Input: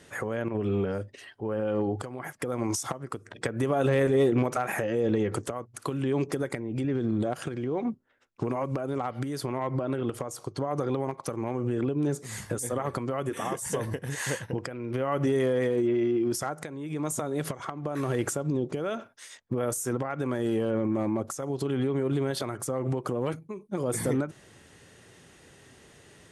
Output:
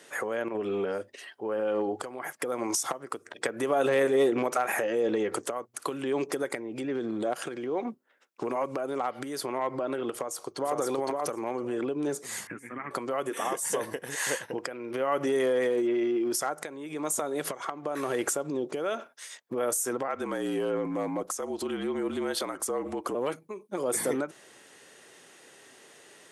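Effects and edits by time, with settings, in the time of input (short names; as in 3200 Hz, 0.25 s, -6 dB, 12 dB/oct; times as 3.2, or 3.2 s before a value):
10.12–10.78 echo throw 0.51 s, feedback 10%, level -2.5 dB
12.47–12.91 EQ curve 290 Hz 0 dB, 520 Hz -20 dB, 2300 Hz +6 dB, 3600 Hz -26 dB
20.08–23.15 frequency shift -48 Hz
whole clip: HPF 360 Hz 12 dB/oct; high shelf 10000 Hz +4.5 dB; gain +2 dB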